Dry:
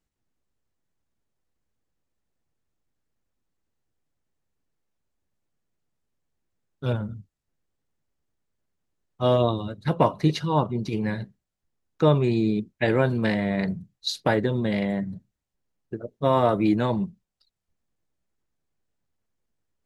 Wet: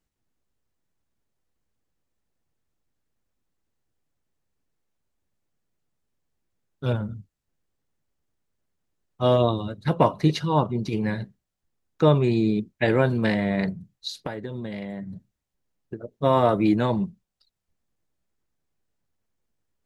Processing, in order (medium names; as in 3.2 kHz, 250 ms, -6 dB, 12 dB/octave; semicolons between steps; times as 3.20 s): 13.69–16.17 s: compression 6:1, threshold -31 dBFS, peak gain reduction 14 dB; trim +1 dB